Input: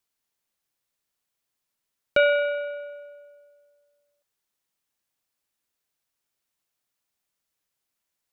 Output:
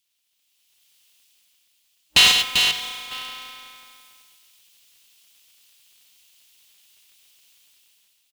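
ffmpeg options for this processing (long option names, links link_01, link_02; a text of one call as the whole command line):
ffmpeg -i in.wav -filter_complex "[0:a]asplit=3[link_01][link_02][link_03];[link_01]afade=type=out:start_time=2.31:duration=0.02[link_04];[link_02]asplit=3[link_05][link_06][link_07];[link_05]bandpass=frequency=730:width_type=q:width=8,volume=0dB[link_08];[link_06]bandpass=frequency=1090:width_type=q:width=8,volume=-6dB[link_09];[link_07]bandpass=frequency=2440:width_type=q:width=8,volume=-9dB[link_10];[link_08][link_09][link_10]amix=inputs=3:normalize=0,afade=type=in:start_time=2.31:duration=0.02,afade=type=out:start_time=2.71:duration=0.02[link_11];[link_03]afade=type=in:start_time=2.71:duration=0.02[link_12];[link_04][link_11][link_12]amix=inputs=3:normalize=0,aeval=exprs='abs(val(0))':channel_layout=same,acrusher=bits=7:mode=log:mix=0:aa=0.000001,asoftclip=type=tanh:threshold=-17dB,highpass=44,highshelf=frequency=2100:width_type=q:width=3:gain=11.5,afftfilt=real='re*(1-between(b*sr/4096,180,750))':imag='im*(1-between(b*sr/4096,180,750))':win_size=4096:overlap=0.75,equalizer=frequency=230:width=2.3:gain=-11.5,aecho=1:1:101|392:0.531|0.501,dynaudnorm=framelen=160:gausssize=11:maxgain=16dB,aeval=exprs='val(0)*sgn(sin(2*PI*130*n/s))':channel_layout=same,volume=-1dB" out.wav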